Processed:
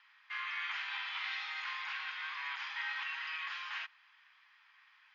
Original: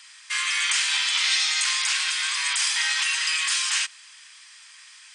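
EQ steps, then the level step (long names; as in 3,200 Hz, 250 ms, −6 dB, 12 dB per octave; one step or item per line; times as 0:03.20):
linear-phase brick-wall low-pass 7,100 Hz
high-frequency loss of the air 390 metres
high-shelf EQ 2,600 Hz −10.5 dB
−4.5 dB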